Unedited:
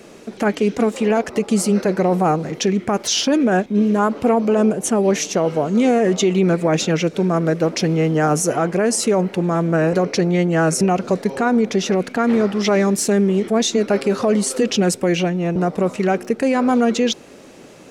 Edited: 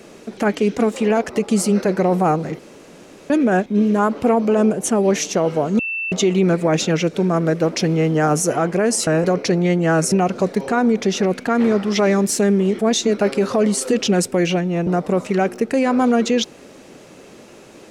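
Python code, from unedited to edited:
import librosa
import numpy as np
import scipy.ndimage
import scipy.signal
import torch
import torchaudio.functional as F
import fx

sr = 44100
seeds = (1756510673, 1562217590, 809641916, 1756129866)

y = fx.edit(x, sr, fx.room_tone_fill(start_s=2.59, length_s=0.71),
    fx.bleep(start_s=5.79, length_s=0.33, hz=2670.0, db=-21.5),
    fx.cut(start_s=9.07, length_s=0.69), tone=tone)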